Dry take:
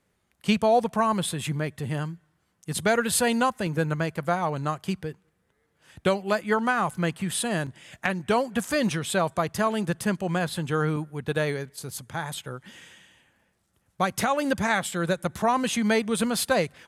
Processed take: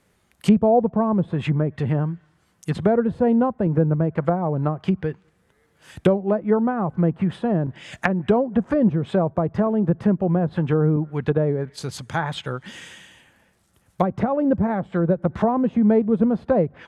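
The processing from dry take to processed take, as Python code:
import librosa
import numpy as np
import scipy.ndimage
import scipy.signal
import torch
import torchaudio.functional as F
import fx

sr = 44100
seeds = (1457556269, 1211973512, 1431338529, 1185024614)

y = fx.env_lowpass_down(x, sr, base_hz=530.0, full_db=-23.0)
y = y * 10.0 ** (8.0 / 20.0)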